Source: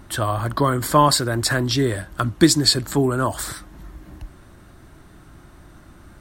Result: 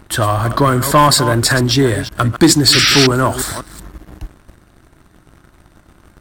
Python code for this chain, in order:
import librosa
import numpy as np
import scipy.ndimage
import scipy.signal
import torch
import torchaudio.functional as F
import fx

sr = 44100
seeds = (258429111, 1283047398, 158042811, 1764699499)

y = fx.reverse_delay(x, sr, ms=190, wet_db=-12.5)
y = fx.spec_paint(y, sr, seeds[0], shape='noise', start_s=2.72, length_s=0.35, low_hz=1200.0, high_hz=5900.0, level_db=-19.0)
y = fx.leveller(y, sr, passes=2)